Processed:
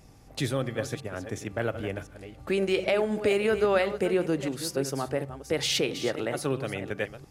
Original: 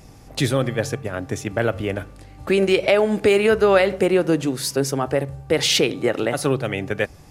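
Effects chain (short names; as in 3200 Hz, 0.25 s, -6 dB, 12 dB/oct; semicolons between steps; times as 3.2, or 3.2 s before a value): reverse delay 0.345 s, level -11 dB; gain -8.5 dB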